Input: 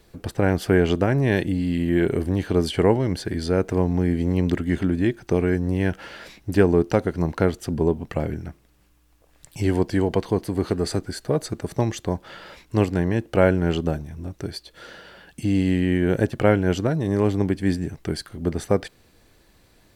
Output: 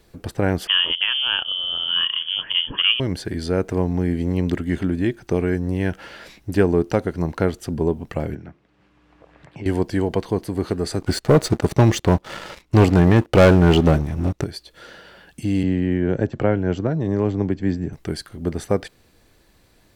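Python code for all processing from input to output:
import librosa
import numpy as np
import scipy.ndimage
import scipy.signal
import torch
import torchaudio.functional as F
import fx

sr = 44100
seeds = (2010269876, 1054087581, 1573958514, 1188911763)

y = fx.chain(x, sr, fx.low_shelf(hz=130.0, db=-9.0),
    fx.freq_invert(carrier_hz=3300), at=(0.67, 3.0))
y = fx.chain(y, sr, fx.bandpass_edges(low_hz=120.0, high_hz=2700.0),
    fx.band_squash(depth_pct=70), at=(8.35, 9.66))
y = fx.chain(y, sr, fx.high_shelf(hz=6900.0, db=-8.5),
    fx.notch(hz=1600.0, q=12.0),
    fx.leveller(passes=3), at=(11.02, 14.44))
y = fx.chain(y, sr, fx.brickwall_lowpass(high_hz=7800.0),
    fx.high_shelf(hz=2100.0, db=-10.0),
    fx.band_squash(depth_pct=40), at=(15.63, 17.93))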